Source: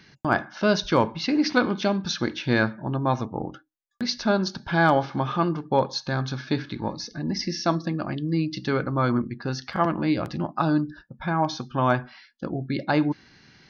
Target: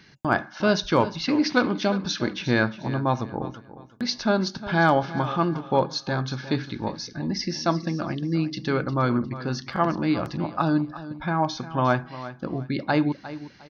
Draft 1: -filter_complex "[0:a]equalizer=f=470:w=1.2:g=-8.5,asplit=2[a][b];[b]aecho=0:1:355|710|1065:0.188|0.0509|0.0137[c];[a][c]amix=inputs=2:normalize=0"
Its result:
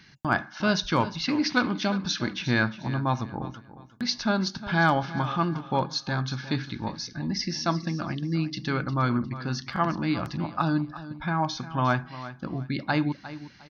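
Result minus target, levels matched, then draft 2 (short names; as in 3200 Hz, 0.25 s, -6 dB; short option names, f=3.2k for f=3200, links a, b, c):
500 Hz band -4.0 dB
-filter_complex "[0:a]asplit=2[a][b];[b]aecho=0:1:355|710|1065:0.188|0.0509|0.0137[c];[a][c]amix=inputs=2:normalize=0"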